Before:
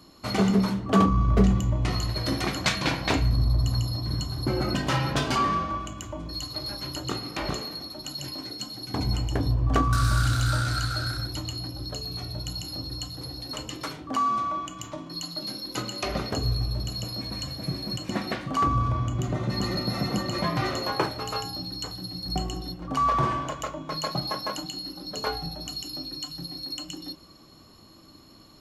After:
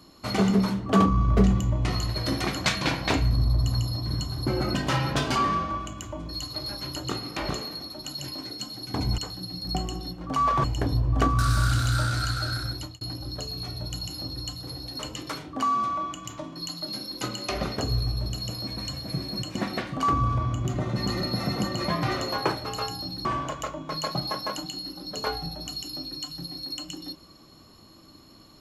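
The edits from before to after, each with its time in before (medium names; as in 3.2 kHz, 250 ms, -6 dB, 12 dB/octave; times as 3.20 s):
11.29–11.55 s: fade out
21.79–23.25 s: move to 9.18 s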